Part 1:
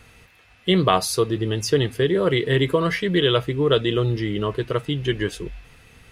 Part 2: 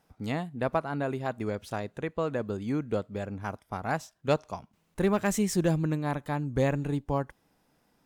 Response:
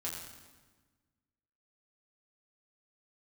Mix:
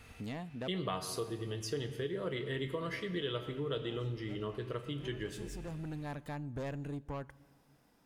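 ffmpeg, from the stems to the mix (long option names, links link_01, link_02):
-filter_complex "[0:a]volume=-9dB,asplit=3[link_01][link_02][link_03];[link_02]volume=-5dB[link_04];[1:a]asoftclip=type=tanh:threshold=-26.5dB,volume=-1dB,asplit=2[link_05][link_06];[link_06]volume=-22dB[link_07];[link_03]apad=whole_len=355241[link_08];[link_05][link_08]sidechaincompress=threshold=-47dB:ratio=4:attack=16:release=515[link_09];[2:a]atrim=start_sample=2205[link_10];[link_04][link_07]amix=inputs=2:normalize=0[link_11];[link_11][link_10]afir=irnorm=-1:irlink=0[link_12];[link_01][link_09][link_12]amix=inputs=3:normalize=0,acompressor=threshold=-44dB:ratio=2"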